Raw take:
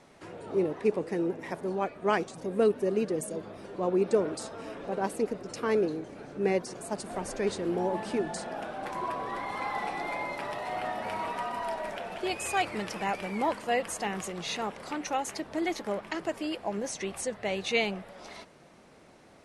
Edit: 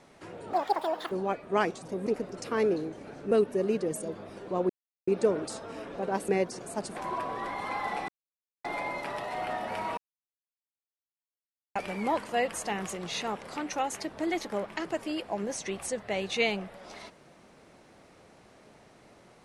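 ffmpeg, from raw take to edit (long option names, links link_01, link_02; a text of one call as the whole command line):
ffmpeg -i in.wav -filter_complex "[0:a]asplit=11[link_01][link_02][link_03][link_04][link_05][link_06][link_07][link_08][link_09][link_10][link_11];[link_01]atrim=end=0.534[link_12];[link_02]atrim=start=0.53:end=1.64,asetpts=PTS-STARTPTS,asetrate=83790,aresample=44100[link_13];[link_03]atrim=start=1.636:end=2.592[link_14];[link_04]atrim=start=5.178:end=6.432[link_15];[link_05]atrim=start=2.588:end=3.97,asetpts=PTS-STARTPTS,afade=type=out:start_time=1.378:duration=0.004:curve=hsin,apad=pad_dur=0.38[link_16];[link_06]atrim=start=3.97:end=5.182,asetpts=PTS-STARTPTS,afade=type=in:duration=0.004:curve=hsin[link_17];[link_07]atrim=start=6.428:end=7.112[link_18];[link_08]atrim=start=8.868:end=9.99,asetpts=PTS-STARTPTS,afade=type=out:start_time=1.118:duration=0.004:curve=hsin,apad=pad_dur=0.56[link_19];[link_09]atrim=start=9.99:end=11.32,asetpts=PTS-STARTPTS,afade=type=in:duration=0.004:curve=hsin,afade=type=out:start_time=1.326:duration=0.004:curve=hsin[link_20];[link_10]atrim=start=11.32:end=13.1,asetpts=PTS-STARTPTS,volume=0[link_21];[link_11]atrim=start=13.1,asetpts=PTS-STARTPTS,afade=type=in:duration=0.004:curve=hsin[link_22];[link_12][link_13]acrossfade=duration=0.004:curve1=hsin:curve2=hsin[link_23];[link_23][link_14]acrossfade=duration=0.004:curve1=hsin:curve2=hsin[link_24];[link_24][link_15]acrossfade=duration=0.004:curve1=hsin:curve2=hsin[link_25];[link_16][link_17]concat=n=2:v=0:a=1[link_26];[link_25][link_26]acrossfade=duration=0.004:curve1=hsin:curve2=hsin[link_27];[link_27][link_18]acrossfade=duration=0.004:curve1=hsin:curve2=hsin[link_28];[link_19][link_20][link_21][link_22]concat=n=4:v=0:a=1[link_29];[link_28][link_29]acrossfade=duration=0.004:curve1=hsin:curve2=hsin" out.wav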